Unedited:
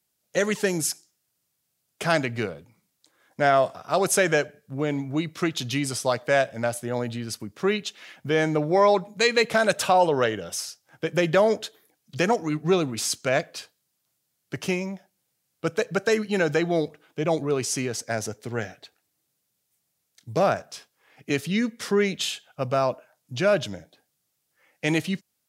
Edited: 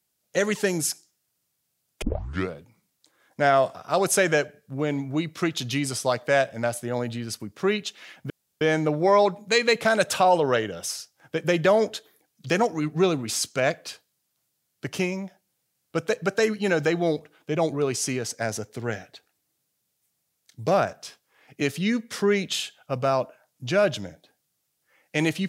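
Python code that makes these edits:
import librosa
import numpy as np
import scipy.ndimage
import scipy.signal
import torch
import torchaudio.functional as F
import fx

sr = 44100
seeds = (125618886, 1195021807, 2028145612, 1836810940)

y = fx.edit(x, sr, fx.tape_start(start_s=2.02, length_s=0.47),
    fx.insert_room_tone(at_s=8.3, length_s=0.31), tone=tone)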